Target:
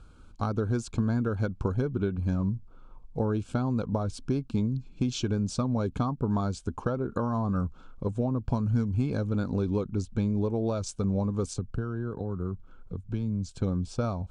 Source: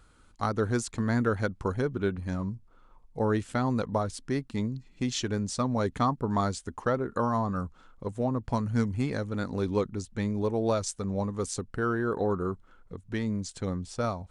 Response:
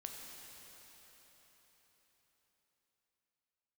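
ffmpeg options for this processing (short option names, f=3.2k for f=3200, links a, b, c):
-filter_complex "[0:a]lowpass=7.6k,acompressor=threshold=-30dB:ratio=6,asuperstop=centerf=1900:order=8:qfactor=4,lowshelf=f=400:g=9,asettb=1/sr,asplit=3[a][b][c];[a]atrim=end=11.534[d];[b]atrim=start=11.53:end=13.61,asetpts=PTS-STARTPTS,afade=t=in:d=0.004:c=qsin,afade=t=out:st=2.076:d=0.004:c=qsin,acrossover=split=180[e][f];[f]acompressor=threshold=-48dB:ratio=1.5[g];[e][g]amix=inputs=2:normalize=0[h];[c]atrim=start=13.606[i];[d][h]acrossfade=d=0.004:c1=hsin:c2=qsin[j];[j][i]acrossfade=d=0.004:c1=qsin:c2=hsin"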